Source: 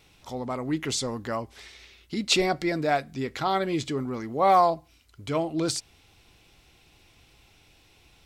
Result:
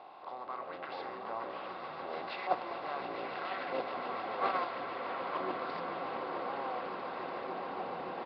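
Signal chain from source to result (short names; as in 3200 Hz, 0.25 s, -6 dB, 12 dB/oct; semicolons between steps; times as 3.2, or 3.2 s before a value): per-bin compression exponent 0.4; downsampling 11025 Hz; LFO band-pass saw up 0.81 Hz 810–1900 Hz; swelling echo 0.144 s, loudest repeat 8, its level -10 dB; echoes that change speed 0.23 s, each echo -6 st, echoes 2; gate -20 dBFS, range -9 dB; gain -5 dB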